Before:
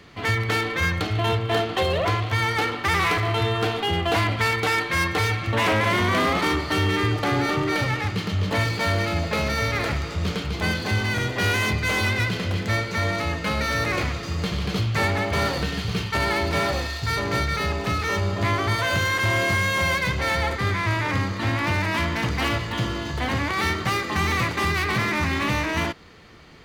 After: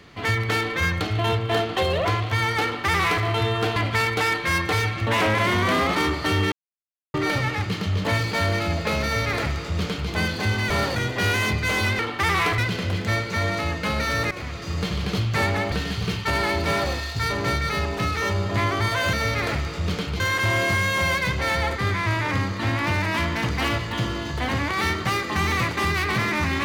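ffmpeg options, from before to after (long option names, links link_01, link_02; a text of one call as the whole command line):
ffmpeg -i in.wav -filter_complex "[0:a]asplit=12[link_01][link_02][link_03][link_04][link_05][link_06][link_07][link_08][link_09][link_10][link_11][link_12];[link_01]atrim=end=3.762[link_13];[link_02]atrim=start=4.218:end=6.98,asetpts=PTS-STARTPTS,afade=type=out:start_time=2.758:duration=0.004:curve=hsin[link_14];[link_03]atrim=start=6.98:end=7.6,asetpts=PTS-STARTPTS,volume=0[link_15];[link_04]atrim=start=7.6:end=11.162,asetpts=PTS-STARTPTS,afade=type=in:duration=0.004:curve=hsin[link_16];[link_05]atrim=start=15.328:end=15.592[link_17];[link_06]atrim=start=11.158:end=12.192[link_18];[link_07]atrim=start=2.638:end=3.232[link_19];[link_08]atrim=start=12.188:end=13.92,asetpts=PTS-STARTPTS,afade=type=out:start_time=1.728:duration=0.004:curve=hsin:silence=0.211349[link_20];[link_09]atrim=start=13.92:end=15.332,asetpts=PTS-STARTPTS,afade=type=in:duration=0.44:silence=0.211349[link_21];[link_10]atrim=start=15.588:end=19.002[link_22];[link_11]atrim=start=9.498:end=10.572[link_23];[link_12]atrim=start=18.998[link_24];[link_14][link_15][link_16]concat=n=3:v=0:a=1[link_25];[link_13][link_25]acrossfade=duration=0.004:curve1=hsin:curve2=hsin[link_26];[link_26][link_17]acrossfade=duration=0.004:curve1=hsin:curve2=hsin[link_27];[link_27][link_18]acrossfade=duration=0.004:curve1=hsin:curve2=hsin[link_28];[link_28][link_19]acrossfade=duration=0.004:curve1=hsin:curve2=hsin[link_29];[link_20][link_21]concat=n=2:v=0:a=1[link_30];[link_29][link_30]acrossfade=duration=0.004:curve1=hsin:curve2=hsin[link_31];[link_31][link_22]acrossfade=duration=0.004:curve1=hsin:curve2=hsin[link_32];[link_32][link_23]acrossfade=duration=0.004:curve1=hsin:curve2=hsin[link_33];[link_33][link_24]acrossfade=duration=0.004:curve1=hsin:curve2=hsin" out.wav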